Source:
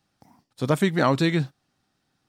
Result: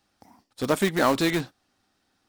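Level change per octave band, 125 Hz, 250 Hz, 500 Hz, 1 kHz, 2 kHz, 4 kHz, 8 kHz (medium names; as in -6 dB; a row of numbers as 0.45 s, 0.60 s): -8.0 dB, -2.0 dB, 0.0 dB, 0.0 dB, +0.5 dB, +1.5 dB, +5.5 dB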